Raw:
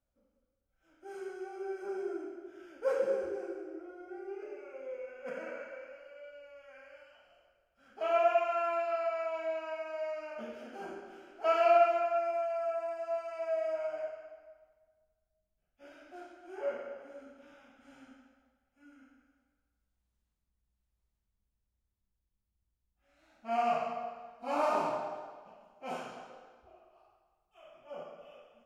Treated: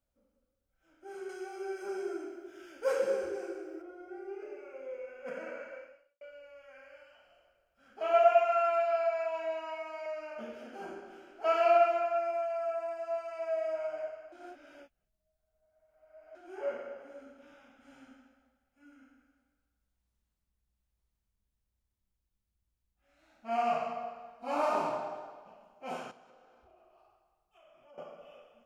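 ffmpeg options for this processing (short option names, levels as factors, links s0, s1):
-filter_complex "[0:a]asettb=1/sr,asplit=3[s0][s1][s2];[s0]atrim=end=1.294[s3];[s1]atrim=start=1.29:end=3.82,asetpts=PTS-STARTPTS,afade=t=in:d=0.004:c=qsin,afade=t=out:st=2.526:d=0.004:c=qsin,highshelf=f=2200:g=10[s4];[s2]atrim=start=3.816[s5];[s3][s4]acrossfade=d=0.004:c1=hsin:c2=qsin[s6];[s6][s5]acrossfade=d=0.004:c1=qsin:c2=hsin,asettb=1/sr,asplit=3[s7][s8][s9];[s7]atrim=end=8.134[s10];[s8]atrim=start=8.13:end=10.06,asetpts=PTS-STARTPTS,afade=t=in:d=0.004:c=qsin,afade=t=out:st=1.926:d=0.004:c=qsin,aecho=1:1:7.3:0.68,atrim=end_sample=85113[s11];[s9]atrim=start=10.056[s12];[s10][s11]acrossfade=d=0.004:c1=hsin:c2=qsin[s13];[s13][s12]acrossfade=d=0.004:c1=qsin:c2=hsin,asettb=1/sr,asplit=3[s14][s15][s16];[s14]atrim=end=26.114[s17];[s15]atrim=start=26.11:end=27.98,asetpts=PTS-STARTPTS,afade=t=in:d=0.004:c=qsin,afade=t=out:st=1.866:d=0.004:c=qsin,acompressor=threshold=0.00112:ratio=3:attack=3.2:release=140:knee=1:detection=peak[s18];[s16]atrim=start=27.976[s19];[s17][s18]acrossfade=d=0.004:c1=hsin:c2=qsin[s20];[s20][s19]acrossfade=d=0.004:c1=qsin:c2=hsin,asplit=4[s21][s22][s23][s24];[s21]atrim=end=6.21,asetpts=PTS-STARTPTS,afade=t=out:st=5.78:d=0.43:c=qua[s25];[s22]atrim=start=6.21:end=14.322,asetpts=PTS-STARTPTS,afade=t=in:d=0.004:c=hsin[s26];[s23]atrim=start=14.318:end=16.352,asetpts=PTS-STARTPTS,areverse[s27];[s24]atrim=start=16.348[s28];[s25][s26]concat=n=2:v=0:a=1[s29];[s29][s27]acrossfade=d=0.004:c1=hsin:c2=hsin[s30];[s30][s28]acrossfade=d=0.004:c1=hsin:c2=hsin"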